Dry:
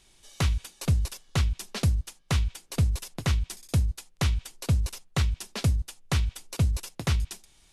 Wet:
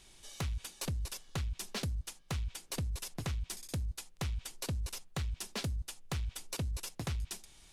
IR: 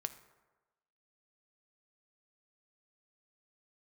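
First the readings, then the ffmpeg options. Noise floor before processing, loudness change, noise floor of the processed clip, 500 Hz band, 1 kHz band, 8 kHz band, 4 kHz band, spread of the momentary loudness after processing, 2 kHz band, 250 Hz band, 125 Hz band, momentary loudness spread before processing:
-60 dBFS, -10.5 dB, -60 dBFS, -8.0 dB, -8.5 dB, -4.5 dB, -7.0 dB, 3 LU, -9.0 dB, -10.0 dB, -12.5 dB, 4 LU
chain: -filter_complex "[0:a]asplit=2[a][b];[b]alimiter=level_in=0.5dB:limit=-24dB:level=0:latency=1,volume=-0.5dB,volume=-1dB[c];[a][c]amix=inputs=2:normalize=0,acompressor=threshold=-26dB:ratio=6,asoftclip=type=tanh:threshold=-25.5dB,volume=-4.5dB"

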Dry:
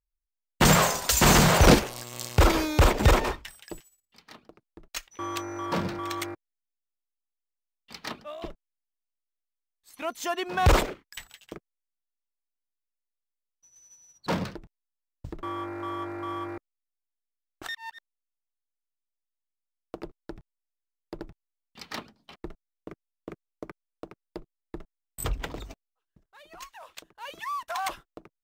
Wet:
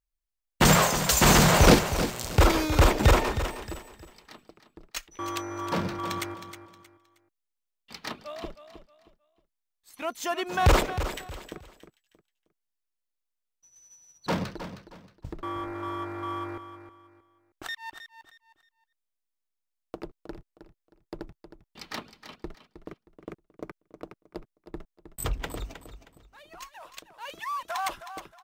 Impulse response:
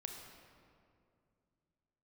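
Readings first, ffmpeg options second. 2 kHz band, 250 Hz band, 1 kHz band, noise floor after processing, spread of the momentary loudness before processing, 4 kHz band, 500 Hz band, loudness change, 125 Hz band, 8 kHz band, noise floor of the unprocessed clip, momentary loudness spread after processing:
+0.5 dB, +0.5 dB, +0.5 dB, -83 dBFS, 24 LU, +0.5 dB, +0.5 dB, 0.0 dB, +0.5 dB, +0.5 dB, under -85 dBFS, 24 LU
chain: -af "aecho=1:1:314|628|942:0.282|0.0817|0.0237"

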